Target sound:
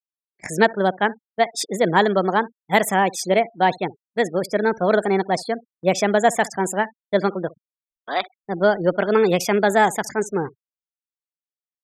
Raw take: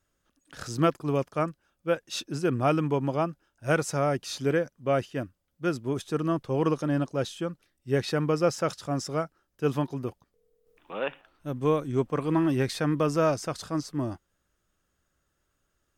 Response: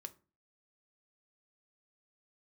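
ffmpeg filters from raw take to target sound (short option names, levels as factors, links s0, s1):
-filter_complex "[0:a]asplit=2[s0][s1];[s1]adelay=86,lowpass=f=1800:p=1,volume=0.0891,asplit=2[s2][s3];[s3]adelay=86,lowpass=f=1800:p=1,volume=0.18[s4];[s0][s2][s4]amix=inputs=3:normalize=0,afftfilt=real='re*gte(hypot(re,im),0.00891)':imag='im*gte(hypot(re,im),0.00891)':win_size=1024:overlap=0.75,agate=range=0.0447:threshold=0.00447:ratio=16:detection=peak,lowshelf=f=87:g=-11,asetrate=59535,aresample=44100,volume=2.66"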